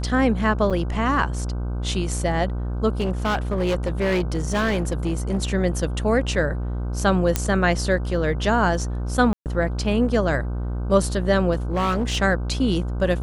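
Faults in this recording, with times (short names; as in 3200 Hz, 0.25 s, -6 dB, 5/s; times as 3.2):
buzz 60 Hz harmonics 26 -26 dBFS
0.7–0.71 gap 6.3 ms
3–5.39 clipped -18 dBFS
7.36 pop -4 dBFS
9.33–9.46 gap 0.128 s
11.53–12.18 clipped -18 dBFS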